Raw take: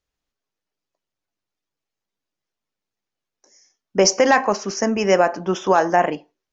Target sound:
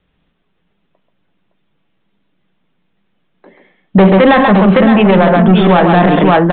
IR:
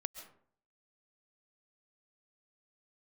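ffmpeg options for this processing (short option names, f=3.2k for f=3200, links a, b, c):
-filter_complex "[0:a]equalizer=f=180:t=o:w=0.65:g=13.5,acrossover=split=450|920[a][b][c];[a]acontrast=72[d];[d][b][c]amix=inputs=3:normalize=0,lowshelf=f=430:g=-6.5,aresample=8000,asoftclip=type=tanh:threshold=-14dB,aresample=44100,aecho=1:1:43|134|563:0.119|0.473|0.398,alimiter=level_in=20dB:limit=-1dB:release=50:level=0:latency=1,volume=-1dB"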